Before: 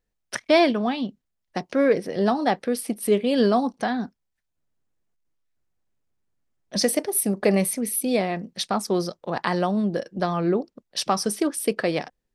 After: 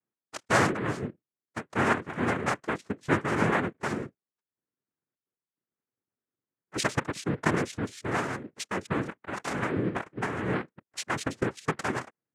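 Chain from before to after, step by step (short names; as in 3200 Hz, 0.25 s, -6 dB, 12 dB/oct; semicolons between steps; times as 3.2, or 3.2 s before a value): Wiener smoothing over 15 samples; notch comb 1200 Hz; noise vocoder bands 3; gain -5.5 dB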